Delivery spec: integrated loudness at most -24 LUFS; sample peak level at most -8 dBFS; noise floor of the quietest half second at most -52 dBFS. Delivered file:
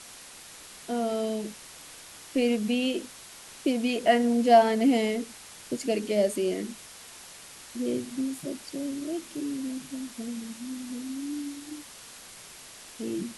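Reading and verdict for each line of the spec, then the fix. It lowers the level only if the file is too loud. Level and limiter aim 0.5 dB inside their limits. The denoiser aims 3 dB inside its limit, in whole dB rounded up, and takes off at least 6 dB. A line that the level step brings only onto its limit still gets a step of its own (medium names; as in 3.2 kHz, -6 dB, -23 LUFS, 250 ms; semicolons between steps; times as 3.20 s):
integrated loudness -28.0 LUFS: pass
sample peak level -7.5 dBFS: fail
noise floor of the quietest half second -47 dBFS: fail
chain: noise reduction 8 dB, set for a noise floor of -47 dBFS; peak limiter -8.5 dBFS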